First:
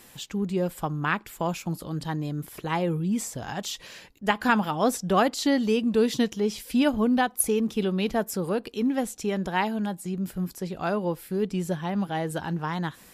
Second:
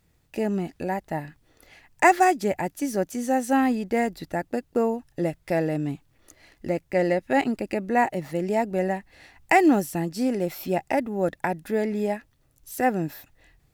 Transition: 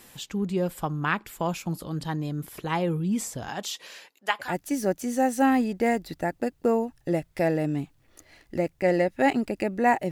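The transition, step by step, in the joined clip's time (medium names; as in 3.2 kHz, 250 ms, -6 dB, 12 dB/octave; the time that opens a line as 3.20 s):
first
3.48–4.55 s: high-pass 180 Hz -> 1.2 kHz
4.47 s: go over to second from 2.58 s, crossfade 0.16 s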